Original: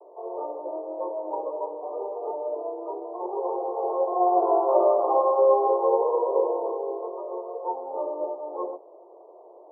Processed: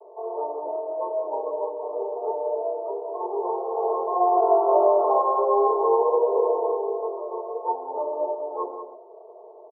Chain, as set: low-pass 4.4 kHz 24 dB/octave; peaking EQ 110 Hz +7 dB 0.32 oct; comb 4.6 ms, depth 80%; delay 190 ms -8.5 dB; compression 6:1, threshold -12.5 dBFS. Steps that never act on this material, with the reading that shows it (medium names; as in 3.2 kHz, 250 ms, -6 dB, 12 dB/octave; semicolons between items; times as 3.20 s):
low-pass 4.4 kHz: input has nothing above 1.2 kHz; peaking EQ 110 Hz: input has nothing below 300 Hz